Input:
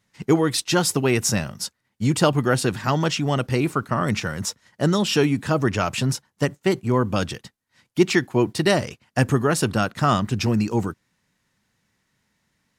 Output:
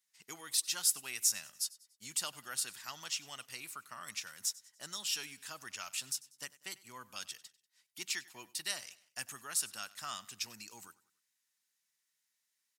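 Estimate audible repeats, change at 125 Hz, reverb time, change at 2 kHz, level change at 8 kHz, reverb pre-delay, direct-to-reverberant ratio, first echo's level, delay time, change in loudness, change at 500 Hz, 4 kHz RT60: 3, under -40 dB, no reverb, -17.0 dB, -5.5 dB, no reverb, no reverb, -20.5 dB, 96 ms, -15.5 dB, -35.0 dB, no reverb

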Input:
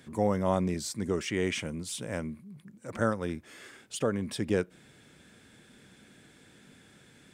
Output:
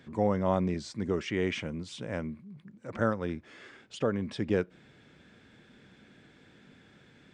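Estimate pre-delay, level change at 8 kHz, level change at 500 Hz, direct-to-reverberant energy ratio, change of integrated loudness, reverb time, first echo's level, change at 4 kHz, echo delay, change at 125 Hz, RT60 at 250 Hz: no reverb, -11.5 dB, 0.0 dB, no reverb, -0.5 dB, no reverb, no echo, -3.0 dB, no echo, 0.0 dB, no reverb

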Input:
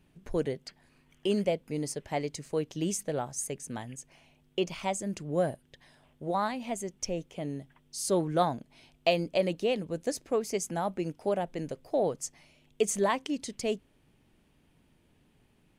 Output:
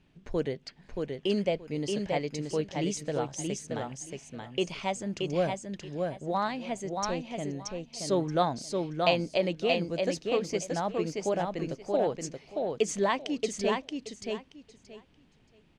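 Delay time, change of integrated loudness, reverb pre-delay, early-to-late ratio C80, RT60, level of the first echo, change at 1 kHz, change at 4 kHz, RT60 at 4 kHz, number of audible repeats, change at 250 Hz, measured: 627 ms, +0.5 dB, no reverb, no reverb, no reverb, -4.0 dB, +1.5 dB, +3.5 dB, no reverb, 3, +1.5 dB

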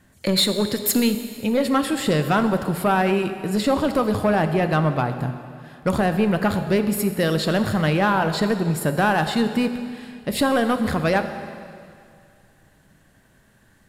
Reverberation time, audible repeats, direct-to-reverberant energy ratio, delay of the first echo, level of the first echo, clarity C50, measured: 2.3 s, no echo, 8.0 dB, no echo, no echo, 9.5 dB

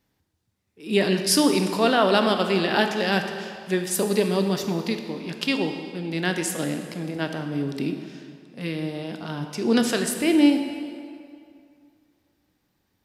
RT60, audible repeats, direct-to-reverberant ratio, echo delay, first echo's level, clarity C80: 2.4 s, no echo, 5.5 dB, no echo, no echo, 8.0 dB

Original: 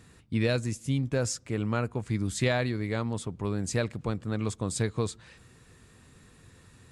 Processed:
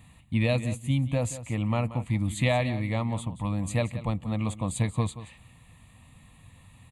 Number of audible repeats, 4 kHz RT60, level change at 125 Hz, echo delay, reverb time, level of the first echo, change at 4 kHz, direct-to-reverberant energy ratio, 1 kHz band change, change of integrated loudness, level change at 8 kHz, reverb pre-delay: 1, no reverb, +3.5 dB, 180 ms, no reverb, -14.0 dB, -0.5 dB, no reverb, +3.5 dB, +2.0 dB, -2.5 dB, no reverb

